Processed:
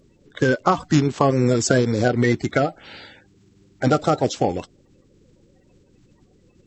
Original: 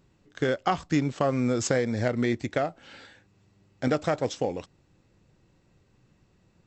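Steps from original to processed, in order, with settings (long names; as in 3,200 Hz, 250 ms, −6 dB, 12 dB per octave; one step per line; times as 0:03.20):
spectral magnitudes quantised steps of 30 dB
level +8 dB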